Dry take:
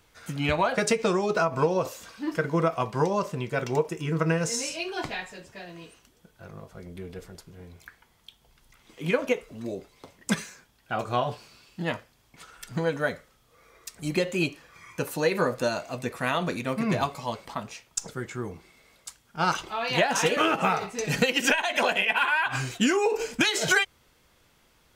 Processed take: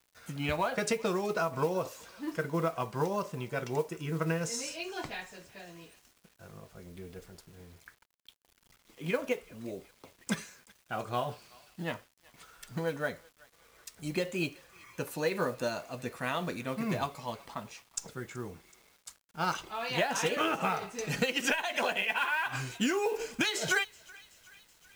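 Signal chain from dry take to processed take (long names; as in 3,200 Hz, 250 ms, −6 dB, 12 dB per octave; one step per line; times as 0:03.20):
feedback echo with a high-pass in the loop 377 ms, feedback 69%, high-pass 1,100 Hz, level −22 dB
noise that follows the level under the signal 25 dB
bit reduction 9 bits
level −6.5 dB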